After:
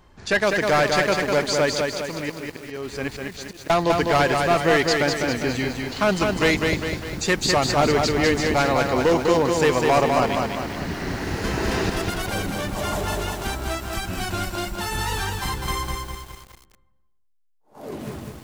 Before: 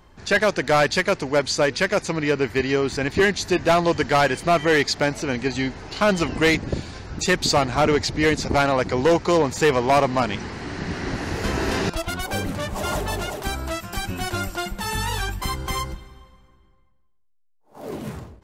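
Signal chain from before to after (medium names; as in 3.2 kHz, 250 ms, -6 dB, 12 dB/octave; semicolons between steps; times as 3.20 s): 1.74–3.70 s: slow attack 671 ms; bit-crushed delay 201 ms, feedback 55%, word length 7-bit, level -3.5 dB; trim -1.5 dB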